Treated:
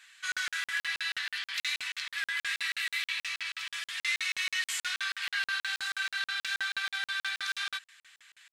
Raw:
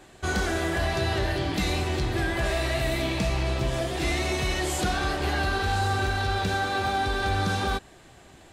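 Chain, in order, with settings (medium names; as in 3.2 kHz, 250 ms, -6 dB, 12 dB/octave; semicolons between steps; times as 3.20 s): inverse Chebyshev high-pass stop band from 630 Hz, stop band 50 dB; treble shelf 4.4 kHz -9 dB; crackling interface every 0.16 s, samples 2048, zero, from 0.32 s; trim +4.5 dB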